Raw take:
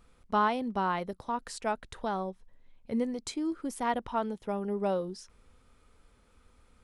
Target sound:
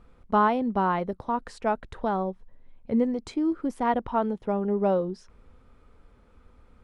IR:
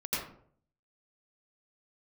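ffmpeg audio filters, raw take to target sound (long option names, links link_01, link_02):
-af "lowpass=frequency=1200:poles=1,volume=7dB"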